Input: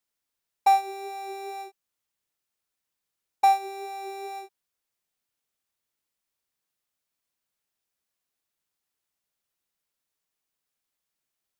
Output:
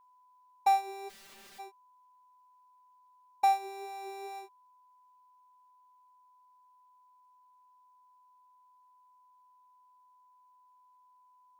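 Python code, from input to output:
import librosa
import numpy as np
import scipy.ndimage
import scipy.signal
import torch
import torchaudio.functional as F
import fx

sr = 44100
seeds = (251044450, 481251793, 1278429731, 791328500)

y = x + 10.0 ** (-55.0 / 20.0) * np.sin(2.0 * np.pi * 1000.0 * np.arange(len(x)) / sr)
y = fx.overflow_wrap(y, sr, gain_db=44.0, at=(1.08, 1.58), fade=0.02)
y = y * librosa.db_to_amplitude(-6.0)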